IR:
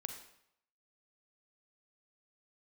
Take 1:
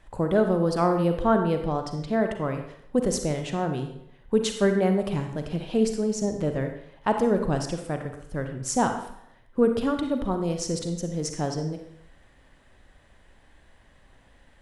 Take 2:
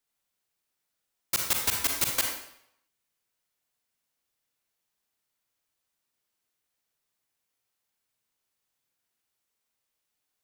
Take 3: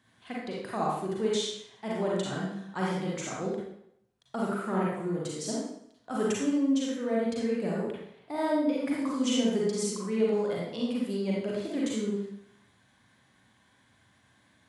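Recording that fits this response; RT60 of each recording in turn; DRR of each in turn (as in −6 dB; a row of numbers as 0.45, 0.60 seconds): 1; 0.75, 0.75, 0.75 seconds; 5.5, 1.0, −5.0 decibels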